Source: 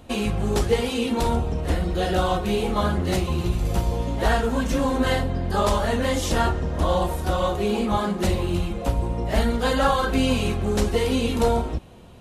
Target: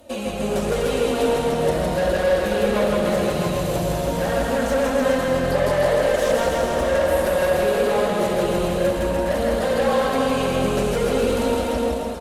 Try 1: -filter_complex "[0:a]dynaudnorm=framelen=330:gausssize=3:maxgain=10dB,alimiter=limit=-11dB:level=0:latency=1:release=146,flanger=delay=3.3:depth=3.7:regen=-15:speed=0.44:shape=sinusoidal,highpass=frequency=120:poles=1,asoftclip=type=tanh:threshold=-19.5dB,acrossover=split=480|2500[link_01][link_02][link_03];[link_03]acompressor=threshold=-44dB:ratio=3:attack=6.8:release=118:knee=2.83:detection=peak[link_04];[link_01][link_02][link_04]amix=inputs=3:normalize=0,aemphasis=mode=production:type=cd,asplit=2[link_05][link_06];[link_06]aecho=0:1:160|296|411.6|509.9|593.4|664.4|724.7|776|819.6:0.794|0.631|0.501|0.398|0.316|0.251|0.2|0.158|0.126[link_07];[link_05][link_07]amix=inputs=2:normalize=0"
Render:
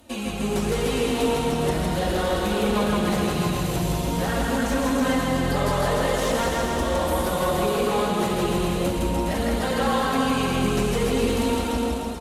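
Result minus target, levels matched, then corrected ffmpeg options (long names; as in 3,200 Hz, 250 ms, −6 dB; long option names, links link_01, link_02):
500 Hz band −3.0 dB
-filter_complex "[0:a]dynaudnorm=framelen=330:gausssize=3:maxgain=10dB,alimiter=limit=-11dB:level=0:latency=1:release=146,flanger=delay=3.3:depth=3.7:regen=-15:speed=0.44:shape=sinusoidal,highpass=frequency=120:poles=1,equalizer=frequency=570:width=3.1:gain=14,asoftclip=type=tanh:threshold=-19.5dB,acrossover=split=480|2500[link_01][link_02][link_03];[link_03]acompressor=threshold=-44dB:ratio=3:attack=6.8:release=118:knee=2.83:detection=peak[link_04];[link_01][link_02][link_04]amix=inputs=3:normalize=0,aemphasis=mode=production:type=cd,asplit=2[link_05][link_06];[link_06]aecho=0:1:160|296|411.6|509.9|593.4|664.4|724.7|776|819.6:0.794|0.631|0.501|0.398|0.316|0.251|0.2|0.158|0.126[link_07];[link_05][link_07]amix=inputs=2:normalize=0"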